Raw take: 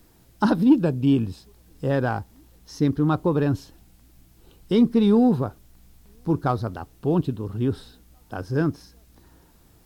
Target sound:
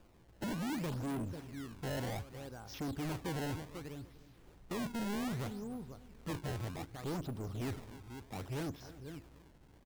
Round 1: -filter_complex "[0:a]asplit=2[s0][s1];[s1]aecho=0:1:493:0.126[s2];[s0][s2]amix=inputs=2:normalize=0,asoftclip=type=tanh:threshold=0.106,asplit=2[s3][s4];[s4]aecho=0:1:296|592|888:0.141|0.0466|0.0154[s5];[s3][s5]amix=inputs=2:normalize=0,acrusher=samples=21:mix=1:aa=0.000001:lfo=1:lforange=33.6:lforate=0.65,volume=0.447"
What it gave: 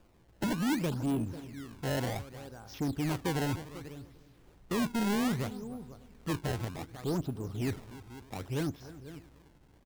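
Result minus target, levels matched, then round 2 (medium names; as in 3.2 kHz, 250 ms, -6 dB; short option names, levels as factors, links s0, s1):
saturation: distortion -6 dB
-filter_complex "[0:a]asplit=2[s0][s1];[s1]aecho=0:1:493:0.126[s2];[s0][s2]amix=inputs=2:normalize=0,asoftclip=type=tanh:threshold=0.0355,asplit=2[s3][s4];[s4]aecho=0:1:296|592|888:0.141|0.0466|0.0154[s5];[s3][s5]amix=inputs=2:normalize=0,acrusher=samples=21:mix=1:aa=0.000001:lfo=1:lforange=33.6:lforate=0.65,volume=0.447"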